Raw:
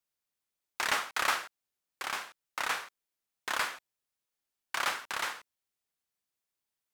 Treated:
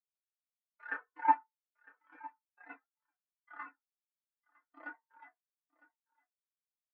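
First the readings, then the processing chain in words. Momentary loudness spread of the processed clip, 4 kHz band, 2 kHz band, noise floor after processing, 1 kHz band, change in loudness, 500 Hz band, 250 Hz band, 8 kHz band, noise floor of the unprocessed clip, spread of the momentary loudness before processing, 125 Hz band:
24 LU, below −35 dB, −12.5 dB, below −85 dBFS, 0.0 dB, −2.5 dB, −14.5 dB, +0.5 dB, below −40 dB, below −85 dBFS, 17 LU, below −30 dB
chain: sub-harmonics by changed cycles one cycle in 3, inverted
single-tap delay 956 ms −5.5 dB
feedback delay network reverb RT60 0.59 s, low-frequency decay 0.8×, high-frequency decay 0.3×, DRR 4 dB
every bin expanded away from the loudest bin 4 to 1

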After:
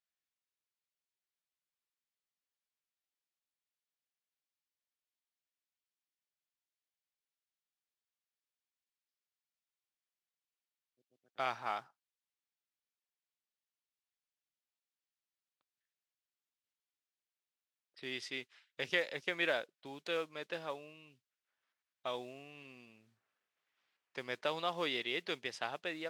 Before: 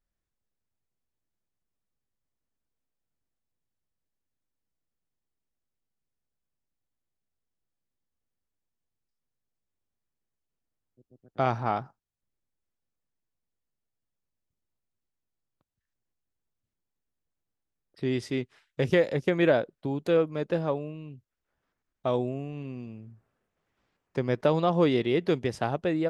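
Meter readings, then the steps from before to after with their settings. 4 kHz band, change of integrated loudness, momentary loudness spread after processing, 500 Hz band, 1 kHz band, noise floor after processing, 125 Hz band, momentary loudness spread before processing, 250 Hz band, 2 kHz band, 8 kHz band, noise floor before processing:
0.0 dB, −11.0 dB, 16 LU, −14.5 dB, −9.5 dB, below −85 dBFS, −25.5 dB, 16 LU, −19.5 dB, −2.5 dB, can't be measured, −85 dBFS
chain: noise that follows the level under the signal 33 dB
resonant band-pass 3,200 Hz, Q 0.84

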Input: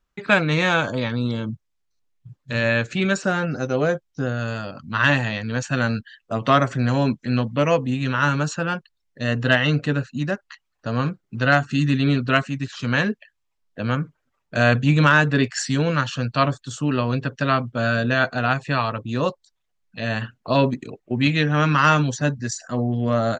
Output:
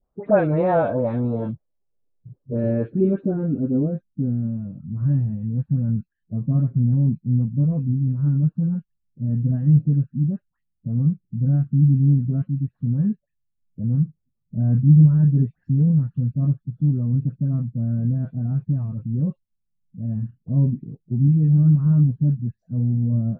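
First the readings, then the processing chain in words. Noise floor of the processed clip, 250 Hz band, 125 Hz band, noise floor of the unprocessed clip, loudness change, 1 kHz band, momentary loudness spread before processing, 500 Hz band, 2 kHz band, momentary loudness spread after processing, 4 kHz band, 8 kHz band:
−75 dBFS, +1.0 dB, +5.5 dB, −74 dBFS, +0.5 dB, below −10 dB, 10 LU, −4.0 dB, below −20 dB, 12 LU, below −35 dB, below −40 dB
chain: spectral magnitudes quantised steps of 15 dB
in parallel at −12 dB: soft clipping −18.5 dBFS, distortion −10 dB
on the sum: low-pass filter sweep 690 Hz → 170 Hz, 0:01.38–0:04.82
all-pass dispersion highs, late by 106 ms, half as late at 1,800 Hz
level −1.5 dB

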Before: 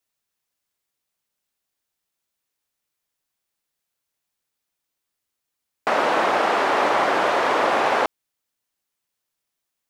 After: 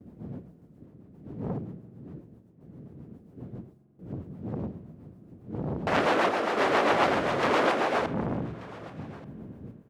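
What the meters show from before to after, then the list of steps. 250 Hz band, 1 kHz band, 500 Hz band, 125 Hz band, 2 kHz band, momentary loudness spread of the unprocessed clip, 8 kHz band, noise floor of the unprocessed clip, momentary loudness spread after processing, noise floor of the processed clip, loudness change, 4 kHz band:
+2.5 dB, −7.0 dB, −4.0 dB, +13.0 dB, −5.5 dB, 4 LU, −6.5 dB, −82 dBFS, 21 LU, −57 dBFS, −7.5 dB, −5.0 dB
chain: wind on the microphone 220 Hz −35 dBFS
noise gate with hold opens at −47 dBFS
high-pass filter 140 Hz 12 dB per octave
low-shelf EQ 350 Hz +9.5 dB
rotating-speaker cabinet horn 7.5 Hz
sample-and-hold tremolo
on a send: single-tap delay 1,183 ms −22.5 dB
on the sum: spring reverb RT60 2.8 s, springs 44 ms, chirp 70 ms, DRR 16 dB
saturating transformer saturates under 1,600 Hz

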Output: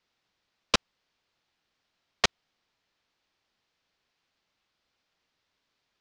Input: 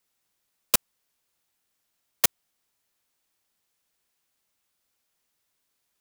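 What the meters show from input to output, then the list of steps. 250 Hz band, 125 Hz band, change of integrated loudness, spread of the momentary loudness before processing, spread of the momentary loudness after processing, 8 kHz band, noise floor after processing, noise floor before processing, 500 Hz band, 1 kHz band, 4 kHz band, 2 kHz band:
+3.5 dB, +3.5 dB, −4.0 dB, 0 LU, 0 LU, −9.5 dB, −81 dBFS, −77 dBFS, +3.5 dB, +3.5 dB, +2.5 dB, +3.5 dB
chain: low-pass filter 5,000 Hz 24 dB per octave
level +3.5 dB

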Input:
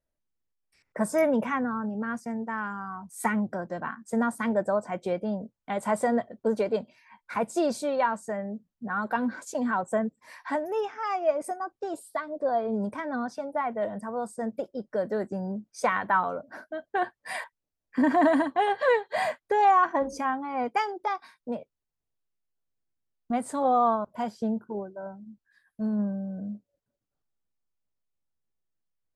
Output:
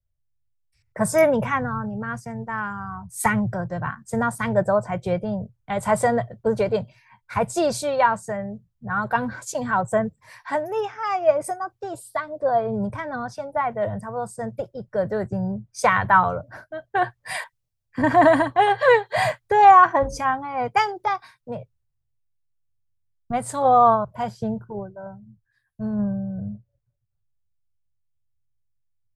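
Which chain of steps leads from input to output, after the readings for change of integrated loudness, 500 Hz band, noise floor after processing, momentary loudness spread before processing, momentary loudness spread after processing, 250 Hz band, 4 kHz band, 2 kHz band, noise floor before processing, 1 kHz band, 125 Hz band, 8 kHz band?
+6.5 dB, +5.5 dB, −74 dBFS, 13 LU, 16 LU, +2.0 dB, +7.5 dB, +7.0 dB, −85 dBFS, +7.5 dB, +11.0 dB, +8.5 dB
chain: low shelf with overshoot 170 Hz +12.5 dB, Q 3
multiband upward and downward expander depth 40%
level +6.5 dB

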